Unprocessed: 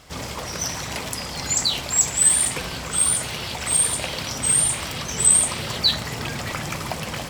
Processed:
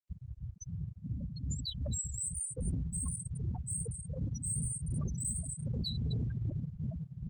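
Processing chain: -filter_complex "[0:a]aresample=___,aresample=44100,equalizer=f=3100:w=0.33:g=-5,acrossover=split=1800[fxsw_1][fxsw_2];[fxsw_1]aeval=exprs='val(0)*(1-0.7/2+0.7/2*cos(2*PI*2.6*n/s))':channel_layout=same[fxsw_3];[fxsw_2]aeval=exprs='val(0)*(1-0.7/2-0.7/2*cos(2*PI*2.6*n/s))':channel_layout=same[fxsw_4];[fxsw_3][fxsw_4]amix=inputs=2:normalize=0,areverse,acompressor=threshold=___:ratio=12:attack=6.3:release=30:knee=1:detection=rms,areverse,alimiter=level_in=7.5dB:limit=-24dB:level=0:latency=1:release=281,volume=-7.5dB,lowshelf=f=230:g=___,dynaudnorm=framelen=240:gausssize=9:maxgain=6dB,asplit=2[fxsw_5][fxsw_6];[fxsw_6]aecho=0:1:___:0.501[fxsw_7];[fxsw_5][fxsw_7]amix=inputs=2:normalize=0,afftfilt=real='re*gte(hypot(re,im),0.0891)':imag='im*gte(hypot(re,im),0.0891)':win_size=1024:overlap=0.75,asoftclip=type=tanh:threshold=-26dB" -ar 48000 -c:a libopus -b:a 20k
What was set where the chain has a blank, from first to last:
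32000, -35dB, 7, 243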